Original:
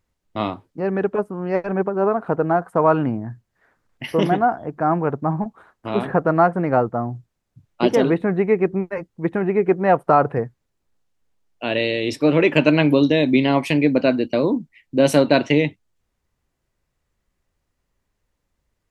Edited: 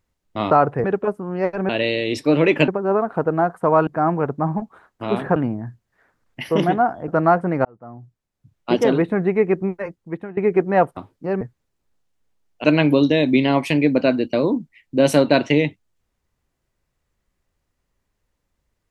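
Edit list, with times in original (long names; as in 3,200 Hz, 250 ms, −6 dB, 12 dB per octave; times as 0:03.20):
0:00.51–0:00.95: swap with 0:10.09–0:10.42
0:04.71–0:06.20: move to 0:02.99
0:06.77–0:07.99: fade in
0:08.68–0:09.49: fade out equal-power, to −19.5 dB
0:11.65–0:12.64: move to 0:01.80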